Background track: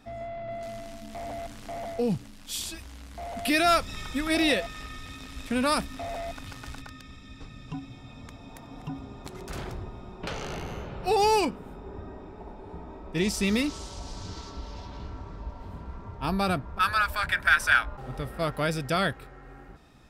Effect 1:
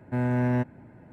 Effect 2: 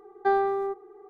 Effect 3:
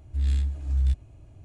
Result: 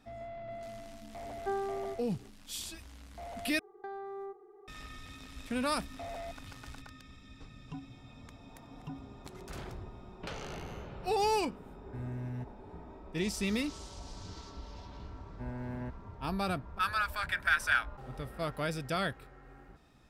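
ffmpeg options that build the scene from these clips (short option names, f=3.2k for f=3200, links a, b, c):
-filter_complex "[2:a]asplit=2[a][b];[1:a]asplit=2[c][d];[0:a]volume=-7dB[e];[a]equalizer=f=330:w=1.5:g=3.5[f];[b]acompressor=threshold=-32dB:ratio=6:attack=3.2:release=140:knee=1:detection=peak[g];[c]acrossover=split=180|3000[h][i][j];[i]acompressor=threshold=-39dB:ratio=6:attack=3.2:release=140:knee=2.83:detection=peak[k];[h][k][j]amix=inputs=3:normalize=0[l];[e]asplit=2[m][n];[m]atrim=end=3.594[o];[g]atrim=end=1.09,asetpts=PTS-STARTPTS,volume=-7.5dB[p];[n]atrim=start=4.676[q];[f]atrim=end=1.09,asetpts=PTS-STARTPTS,volume=-13dB,afade=t=in:d=0.004:c=hsin,afade=t=out:st=1.086:d=0.004:c=hsin,adelay=1210[r];[l]atrim=end=1.12,asetpts=PTS-STARTPTS,volume=-10.5dB,afade=t=in:d=0.004:c=hsin,afade=t=out:st=1.116:d=0.004:c=hsin,adelay=11810[s];[d]atrim=end=1.12,asetpts=PTS-STARTPTS,volume=-15.5dB,afade=t=in:d=0.004:c=hsin,afade=t=out:st=1.116:d=0.004:c=hsin,adelay=15270[t];[o][p]acrossfade=d=0.004:c1=hsin:c2=hsin[u];[u][q]acrossfade=d=0.004:c1=hsin:c2=hsin[v];[v][r][s][t]amix=inputs=4:normalize=0"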